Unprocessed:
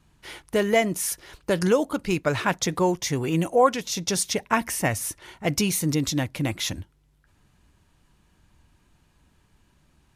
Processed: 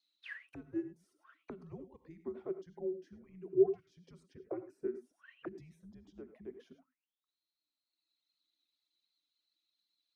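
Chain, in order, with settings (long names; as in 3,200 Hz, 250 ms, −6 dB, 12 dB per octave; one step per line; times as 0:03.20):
reverb reduction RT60 1.8 s
frequency shifter −350 Hz
reverb whose tail is shaped and stops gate 120 ms rising, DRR 11 dB
in parallel at +0.5 dB: downward compressor, threshold −30 dBFS, peak gain reduction 16 dB
on the sum: envelope filter 380–4,300 Hz, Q 21, down, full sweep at −22 dBFS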